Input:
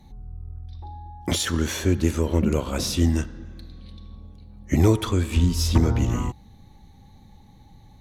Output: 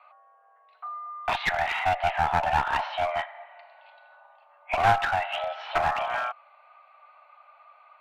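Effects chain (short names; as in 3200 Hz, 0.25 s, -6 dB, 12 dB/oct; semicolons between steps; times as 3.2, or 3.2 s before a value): mistuned SSB +370 Hz 380–2500 Hz; one-sided clip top -31 dBFS; gain +7 dB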